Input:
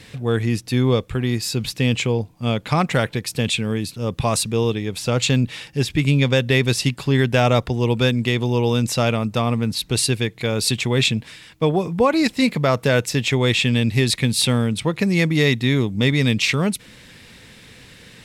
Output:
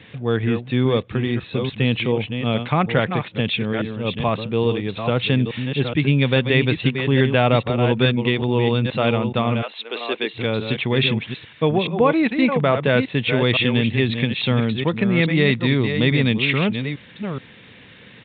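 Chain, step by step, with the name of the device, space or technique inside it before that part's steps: reverse delay 0.424 s, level -7 dB; 9.61–10.33 HPF 620 Hz -> 250 Hz 24 dB/oct; Bluetooth headset (HPF 100 Hz; downsampling 8000 Hz; SBC 64 kbps 16000 Hz)

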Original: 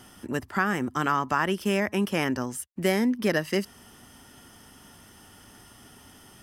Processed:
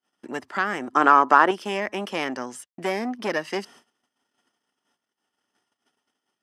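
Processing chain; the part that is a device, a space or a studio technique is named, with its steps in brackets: public-address speaker with an overloaded transformer (core saturation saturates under 790 Hz; BPF 320–6800 Hz); 0.93–1.51 band shelf 640 Hz +9.5 dB 2.9 oct; gate -50 dBFS, range -40 dB; gain +2 dB

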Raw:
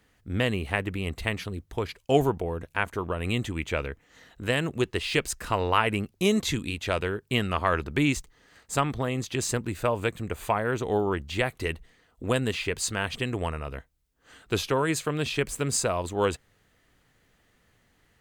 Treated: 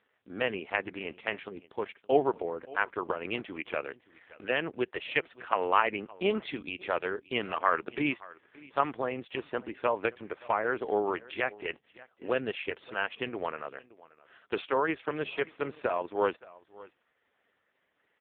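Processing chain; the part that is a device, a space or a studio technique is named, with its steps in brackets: 13.77–14.55 HPF 180 Hz -> 44 Hz 12 dB/oct; satellite phone (BPF 370–3100 Hz; echo 0.572 s -21 dB; AMR-NB 4.75 kbps 8000 Hz)

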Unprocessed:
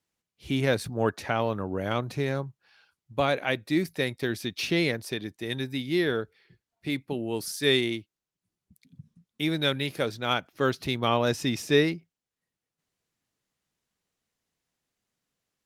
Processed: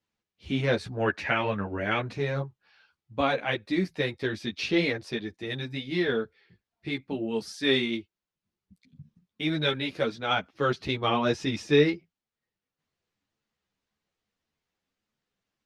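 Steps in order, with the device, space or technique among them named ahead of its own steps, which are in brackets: 0.91–2.11 band shelf 2100 Hz +9 dB 1.1 oct; string-machine ensemble chorus (ensemble effect; LPF 4900 Hz 12 dB/oct); gain +3 dB

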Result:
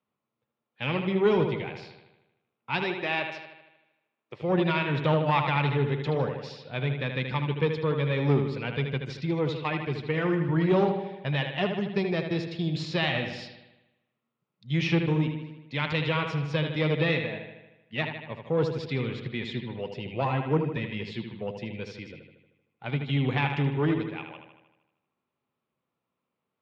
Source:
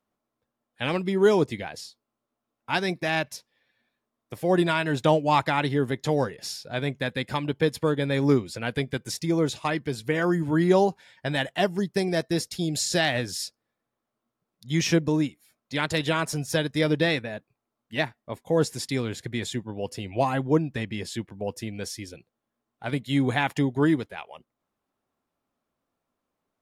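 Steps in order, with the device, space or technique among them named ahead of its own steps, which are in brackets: analogue delay pedal into a guitar amplifier (analogue delay 77 ms, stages 2048, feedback 59%, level -7 dB; tube stage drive 11 dB, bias 0.45; speaker cabinet 100–3800 Hz, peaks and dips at 140 Hz +6 dB, 290 Hz -6 dB, 680 Hz -6 dB, 1600 Hz -5 dB, 2500 Hz +4 dB); 2.84–4.42 resonant low shelf 250 Hz -7 dB, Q 1.5

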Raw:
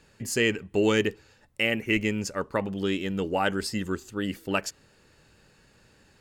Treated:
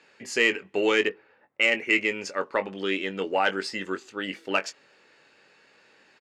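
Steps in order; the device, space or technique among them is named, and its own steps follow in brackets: intercom (BPF 390–4900 Hz; bell 2200 Hz +5 dB 0.48 oct; soft clip -11 dBFS, distortion -21 dB; doubler 21 ms -10 dB); 1.09–1.71 low-pass opened by the level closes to 1400 Hz, open at -21 dBFS; gain +2.5 dB

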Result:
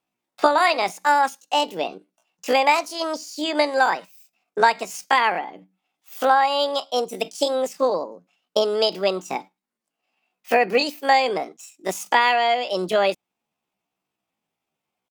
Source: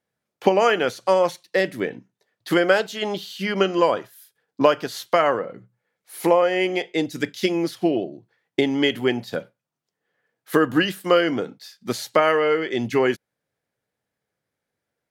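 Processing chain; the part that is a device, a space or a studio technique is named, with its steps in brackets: chipmunk voice (pitch shift +7.5 st)

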